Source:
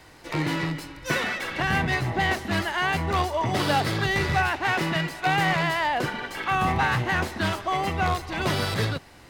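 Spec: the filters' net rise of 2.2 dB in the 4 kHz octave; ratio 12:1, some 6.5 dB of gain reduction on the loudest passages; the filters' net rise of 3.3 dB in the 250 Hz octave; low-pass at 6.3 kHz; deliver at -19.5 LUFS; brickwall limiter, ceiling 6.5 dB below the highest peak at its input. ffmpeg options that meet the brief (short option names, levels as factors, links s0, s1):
-af "lowpass=6300,equalizer=f=250:t=o:g=5,equalizer=f=4000:t=o:g=3.5,acompressor=threshold=0.0631:ratio=12,volume=3.16,alimiter=limit=0.316:level=0:latency=1"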